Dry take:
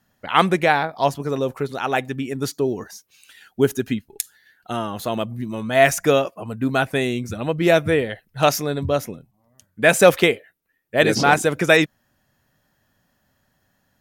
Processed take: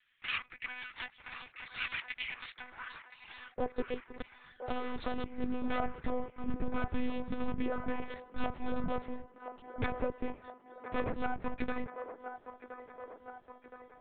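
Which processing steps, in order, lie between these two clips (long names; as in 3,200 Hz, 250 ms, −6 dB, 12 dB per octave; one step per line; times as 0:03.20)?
lower of the sound and its delayed copy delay 5.5 ms
treble cut that deepens with the level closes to 1,200 Hz, closed at −14 dBFS
0:05.75–0:07.10: low-shelf EQ 330 Hz +9 dB
downward compressor 10 to 1, threshold −30 dBFS, peak gain reduction 22 dB
high-pass filter sweep 2,200 Hz → 120 Hz, 0:02.46–0:04.81
one-pitch LPC vocoder at 8 kHz 250 Hz
on a send: delay with a band-pass on its return 1,019 ms, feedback 60%, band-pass 790 Hz, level −7 dB
on the sum: level −2 dB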